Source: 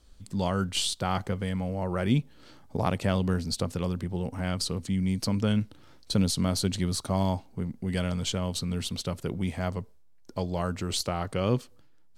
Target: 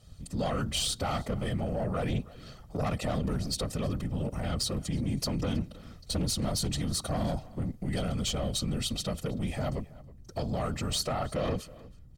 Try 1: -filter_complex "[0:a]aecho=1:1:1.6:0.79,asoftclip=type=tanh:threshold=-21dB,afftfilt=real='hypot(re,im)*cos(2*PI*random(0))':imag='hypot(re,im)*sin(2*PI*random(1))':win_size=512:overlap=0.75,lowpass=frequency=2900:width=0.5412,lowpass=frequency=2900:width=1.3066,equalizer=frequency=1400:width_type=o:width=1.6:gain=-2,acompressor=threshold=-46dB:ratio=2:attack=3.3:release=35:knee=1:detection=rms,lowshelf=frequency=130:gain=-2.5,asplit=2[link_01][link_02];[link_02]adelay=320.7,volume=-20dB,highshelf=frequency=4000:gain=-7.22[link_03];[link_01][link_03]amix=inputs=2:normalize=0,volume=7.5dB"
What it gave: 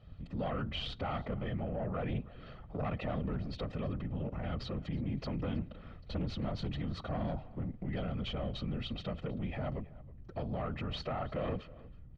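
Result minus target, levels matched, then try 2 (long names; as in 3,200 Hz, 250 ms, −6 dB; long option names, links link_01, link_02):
downward compressor: peak gain reduction +5 dB; 4,000 Hz band −4.5 dB
-filter_complex "[0:a]aecho=1:1:1.6:0.79,asoftclip=type=tanh:threshold=-21dB,afftfilt=real='hypot(re,im)*cos(2*PI*random(0))':imag='hypot(re,im)*sin(2*PI*random(1))':win_size=512:overlap=0.75,equalizer=frequency=1400:width_type=o:width=1.6:gain=-2,acompressor=threshold=-35.5dB:ratio=2:attack=3.3:release=35:knee=1:detection=rms,lowshelf=frequency=130:gain=-2.5,asplit=2[link_01][link_02];[link_02]adelay=320.7,volume=-20dB,highshelf=frequency=4000:gain=-7.22[link_03];[link_01][link_03]amix=inputs=2:normalize=0,volume=7.5dB"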